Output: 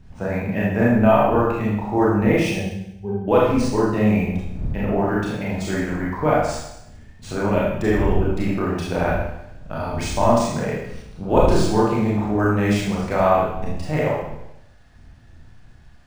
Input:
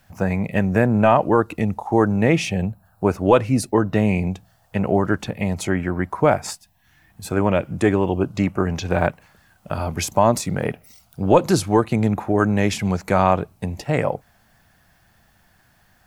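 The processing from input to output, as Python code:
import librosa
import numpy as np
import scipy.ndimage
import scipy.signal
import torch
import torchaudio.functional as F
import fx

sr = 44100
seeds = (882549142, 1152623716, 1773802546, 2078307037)

y = fx.dmg_wind(x, sr, seeds[0], corner_hz=82.0, level_db=-31.0)
y = fx.octave_resonator(y, sr, note='G', decay_s=0.12, at=(2.59, 3.28))
y = fx.rev_schroeder(y, sr, rt60_s=0.83, comb_ms=26, drr_db=-6.0)
y = np.interp(np.arange(len(y)), np.arange(len(y))[::3], y[::3])
y = y * librosa.db_to_amplitude(-7.0)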